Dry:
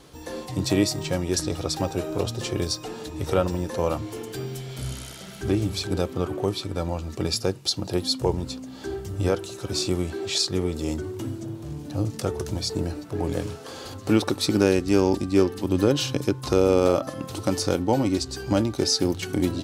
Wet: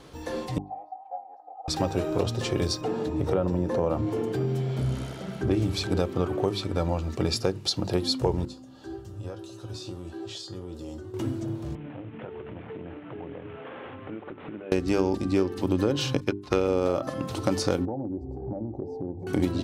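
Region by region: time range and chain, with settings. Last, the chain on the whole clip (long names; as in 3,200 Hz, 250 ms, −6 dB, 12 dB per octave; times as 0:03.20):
0:00.58–0:01.68: flat-topped band-pass 770 Hz, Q 6 + comb filter 3.9 ms, depth 100%
0:02.81–0:05.51: high-pass filter 90 Hz + tilt shelving filter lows +6.5 dB, about 1,300 Hz + downward compressor 2 to 1, threshold −25 dBFS
0:08.45–0:11.14: parametric band 2,200 Hz −12.5 dB 0.26 octaves + downward compressor 4 to 1, threshold −25 dBFS + tuned comb filter 110 Hz, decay 0.25 s, harmonics odd, mix 80%
0:11.75–0:14.72: variable-slope delta modulation 16 kbit/s + high-pass filter 130 Hz + downward compressor 5 to 1, threshold −38 dBFS
0:16.20–0:16.68: parametric band 2,200 Hz +7.5 dB 1.8 octaves + expander for the loud parts 2.5 to 1, over −34 dBFS
0:17.85–0:19.27: elliptic low-pass filter 840 Hz + downward compressor 4 to 1, threshold −32 dBFS
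whole clip: high-shelf EQ 5,400 Hz −10 dB; mains-hum notches 50/100/150/200/250/300/350/400 Hz; downward compressor, threshold −22 dBFS; level +2.5 dB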